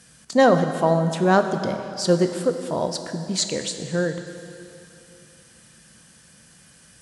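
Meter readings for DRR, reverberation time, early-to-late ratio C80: 6.5 dB, 2.8 s, 8.5 dB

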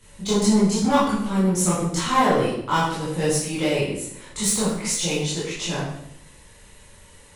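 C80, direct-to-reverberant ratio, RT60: 5.5 dB, -10.0 dB, 0.75 s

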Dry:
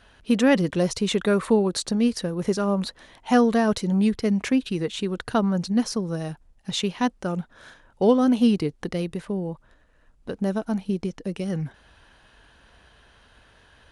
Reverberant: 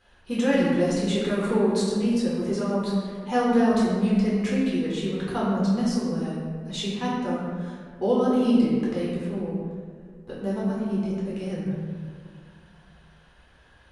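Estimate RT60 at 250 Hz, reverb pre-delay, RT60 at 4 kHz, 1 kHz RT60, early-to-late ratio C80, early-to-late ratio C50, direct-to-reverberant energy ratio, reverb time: 2.4 s, 8 ms, 1.0 s, 1.7 s, 1.0 dB, -1.0 dB, -7.5 dB, 1.9 s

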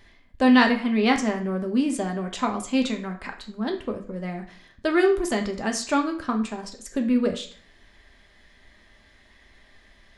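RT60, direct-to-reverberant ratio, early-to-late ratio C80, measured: 0.50 s, 3.0 dB, 15.0 dB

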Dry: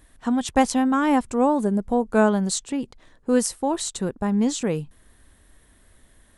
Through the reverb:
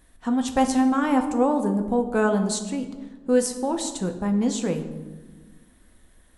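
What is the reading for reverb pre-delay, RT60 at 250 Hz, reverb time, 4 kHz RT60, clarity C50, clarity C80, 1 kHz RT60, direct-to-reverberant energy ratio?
4 ms, 2.0 s, 1.3 s, 0.75 s, 10.0 dB, 11.5 dB, 1.1 s, 5.0 dB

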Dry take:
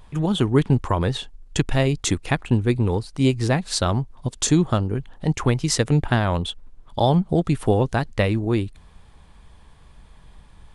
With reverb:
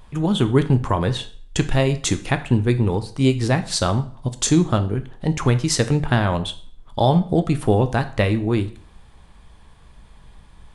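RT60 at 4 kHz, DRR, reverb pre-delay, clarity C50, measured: 0.45 s, 9.5 dB, 4 ms, 15.0 dB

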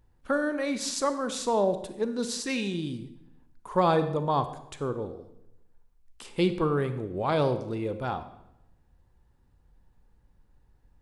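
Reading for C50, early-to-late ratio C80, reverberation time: 11.5 dB, 13.5 dB, 0.85 s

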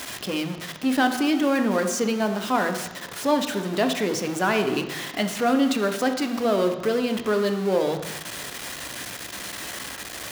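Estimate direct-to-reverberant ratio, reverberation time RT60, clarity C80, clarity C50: 6.0 dB, 1.0 s, 10.5 dB, 8.5 dB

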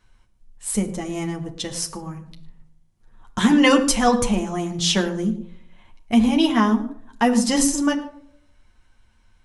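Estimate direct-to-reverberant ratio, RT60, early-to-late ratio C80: 2.0 dB, not exponential, 14.0 dB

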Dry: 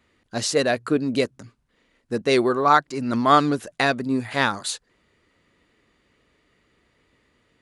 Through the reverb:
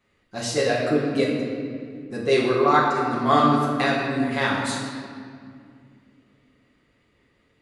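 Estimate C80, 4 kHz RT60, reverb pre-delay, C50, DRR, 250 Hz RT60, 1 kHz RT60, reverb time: 2.0 dB, 1.4 s, 5 ms, 1.0 dB, -6.5 dB, 3.5 s, 2.0 s, 2.2 s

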